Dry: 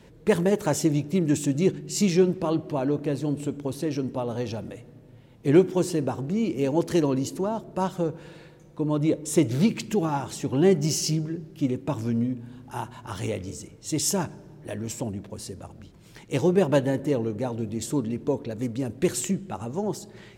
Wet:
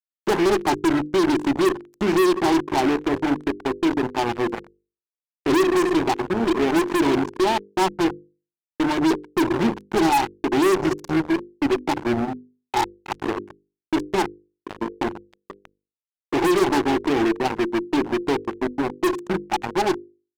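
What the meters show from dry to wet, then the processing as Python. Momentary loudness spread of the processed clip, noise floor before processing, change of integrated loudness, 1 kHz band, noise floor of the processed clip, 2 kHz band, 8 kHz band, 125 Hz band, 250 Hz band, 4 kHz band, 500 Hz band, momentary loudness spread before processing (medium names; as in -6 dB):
9 LU, -51 dBFS, +4.0 dB, +11.5 dB, under -85 dBFS, +11.0 dB, -5.0 dB, -6.5 dB, +3.5 dB, +5.5 dB, +3.5 dB, 15 LU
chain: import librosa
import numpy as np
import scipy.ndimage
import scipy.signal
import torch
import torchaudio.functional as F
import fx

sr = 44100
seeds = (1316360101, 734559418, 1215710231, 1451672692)

y = fx.double_bandpass(x, sr, hz=540.0, octaves=1.2)
y = fx.fuzz(y, sr, gain_db=40.0, gate_db=-40.0)
y = fx.hum_notches(y, sr, base_hz=50, count=10)
y = y * librosa.db_to_amplitude(-1.5)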